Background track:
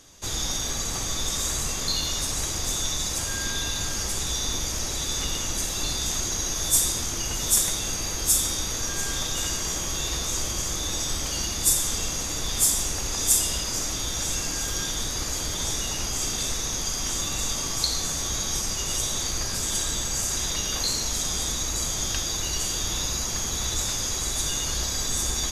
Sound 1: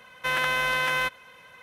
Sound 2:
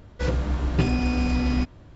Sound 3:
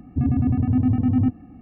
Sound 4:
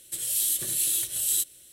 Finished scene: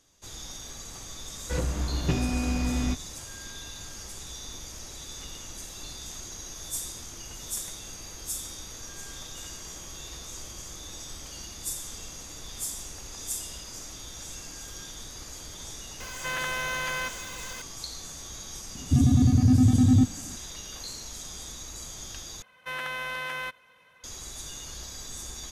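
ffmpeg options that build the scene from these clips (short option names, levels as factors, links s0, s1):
-filter_complex "[1:a]asplit=2[s0][s1];[0:a]volume=0.224[s2];[s0]aeval=exprs='val(0)+0.5*0.0316*sgn(val(0))':c=same[s3];[3:a]bass=f=250:g=4,treble=f=4000:g=12[s4];[s2]asplit=2[s5][s6];[s5]atrim=end=22.424[s7];[s1]atrim=end=1.62,asetpts=PTS-STARTPTS,volume=0.376[s8];[s6]atrim=start=24.036[s9];[2:a]atrim=end=1.95,asetpts=PTS-STARTPTS,volume=0.596,afade=t=in:d=0.004:c=hsin,afade=t=out:st=1.946:d=0.004:c=hsin,adelay=1300[s10];[s3]atrim=end=1.62,asetpts=PTS-STARTPTS,volume=0.422,afade=t=in:d=0.004:c=hsin,afade=t=out:st=1.616:d=0.004:c=hsin,adelay=16000[s11];[s4]atrim=end=1.61,asetpts=PTS-STARTPTS,volume=0.75,afade=t=in:d=0.004:c=hsin,afade=t=out:st=1.606:d=0.004:c=hsin,adelay=18750[s12];[s7][s8]acrossfade=d=0.004:c1=hsin:c2=hsin[s13];[s13][s9]acrossfade=d=0.004:c1=hsin:c2=hsin[s14];[s14][s10][s11][s12]amix=inputs=4:normalize=0"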